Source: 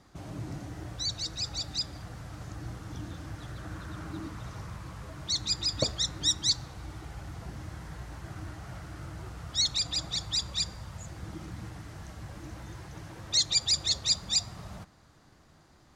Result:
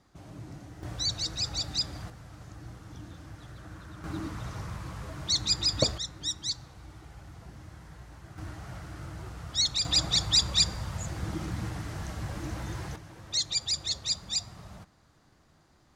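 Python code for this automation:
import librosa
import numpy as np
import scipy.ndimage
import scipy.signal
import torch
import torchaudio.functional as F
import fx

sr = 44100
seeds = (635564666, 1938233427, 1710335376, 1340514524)

y = fx.gain(x, sr, db=fx.steps((0.0, -5.5), (0.83, 2.5), (2.1, -5.0), (4.04, 3.0), (5.98, -6.0), (8.38, 0.5), (9.85, 7.0), (12.96, -3.5)))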